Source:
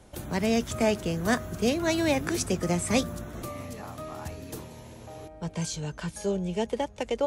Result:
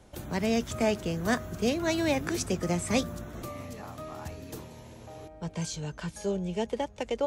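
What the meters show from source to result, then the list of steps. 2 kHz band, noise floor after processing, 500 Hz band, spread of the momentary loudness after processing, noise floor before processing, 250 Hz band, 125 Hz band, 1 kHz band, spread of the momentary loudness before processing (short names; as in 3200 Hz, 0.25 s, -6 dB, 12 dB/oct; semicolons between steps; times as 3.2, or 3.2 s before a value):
-2.0 dB, -49 dBFS, -2.0 dB, 15 LU, -47 dBFS, -2.0 dB, -2.0 dB, -2.0 dB, 15 LU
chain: bell 10000 Hz -4.5 dB 0.45 oct; gain -2 dB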